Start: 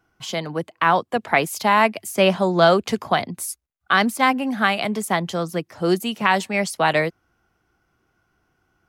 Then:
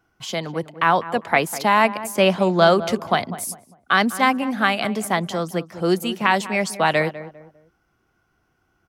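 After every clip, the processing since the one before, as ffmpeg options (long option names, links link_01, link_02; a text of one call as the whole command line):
ffmpeg -i in.wav -filter_complex "[0:a]asplit=2[link_01][link_02];[link_02]adelay=200,lowpass=frequency=1200:poles=1,volume=-13dB,asplit=2[link_03][link_04];[link_04]adelay=200,lowpass=frequency=1200:poles=1,volume=0.35,asplit=2[link_05][link_06];[link_06]adelay=200,lowpass=frequency=1200:poles=1,volume=0.35[link_07];[link_01][link_03][link_05][link_07]amix=inputs=4:normalize=0" out.wav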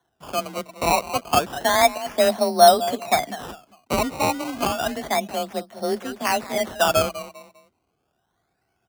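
ffmpeg -i in.wav -af "equalizer=frequency=650:width=3.4:gain=12.5,acrusher=samples=18:mix=1:aa=0.000001:lfo=1:lforange=18:lforate=0.3,afreqshift=28,volume=-7dB" out.wav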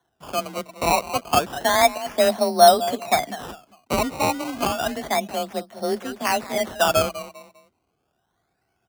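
ffmpeg -i in.wav -af anull out.wav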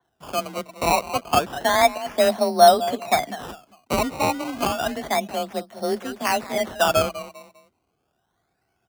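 ffmpeg -i in.wav -af "adynamicequalizer=threshold=0.0112:dfrequency=4300:dqfactor=0.7:tfrequency=4300:tqfactor=0.7:attack=5:release=100:ratio=0.375:range=2.5:mode=cutabove:tftype=highshelf" out.wav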